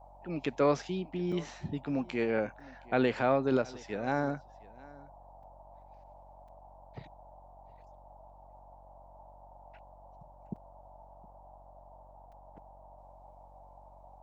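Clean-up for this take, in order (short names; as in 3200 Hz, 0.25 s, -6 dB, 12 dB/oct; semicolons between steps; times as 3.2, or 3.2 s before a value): de-hum 46.9 Hz, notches 15; interpolate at 1.32/2.6/5.43/6.48/10.56/12.32, 4.5 ms; noise print and reduce 24 dB; inverse comb 0.716 s -22 dB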